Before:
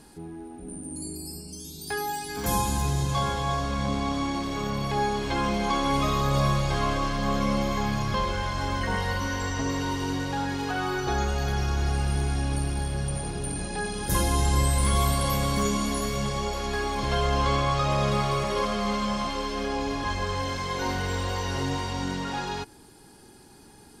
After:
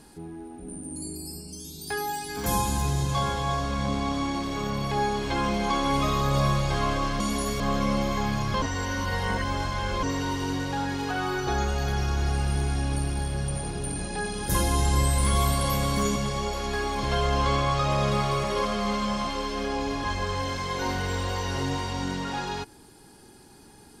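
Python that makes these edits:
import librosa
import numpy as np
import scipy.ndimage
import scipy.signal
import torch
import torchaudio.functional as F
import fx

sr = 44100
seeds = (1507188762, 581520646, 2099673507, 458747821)

y = fx.edit(x, sr, fx.reverse_span(start_s=8.22, length_s=1.41),
    fx.move(start_s=15.76, length_s=0.4, to_s=7.2), tone=tone)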